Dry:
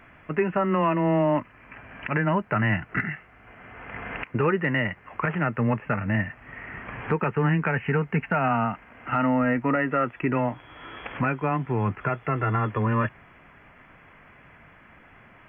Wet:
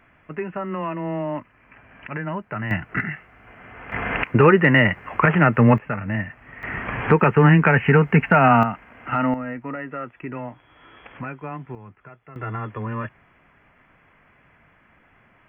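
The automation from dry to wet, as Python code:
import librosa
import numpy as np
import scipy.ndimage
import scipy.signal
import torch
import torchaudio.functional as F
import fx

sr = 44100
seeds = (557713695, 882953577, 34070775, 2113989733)

y = fx.gain(x, sr, db=fx.steps((0.0, -5.0), (2.71, 2.0), (3.92, 9.5), (5.78, -0.5), (6.63, 9.0), (8.63, 2.0), (9.34, -7.5), (11.75, -18.0), (12.36, -5.0)))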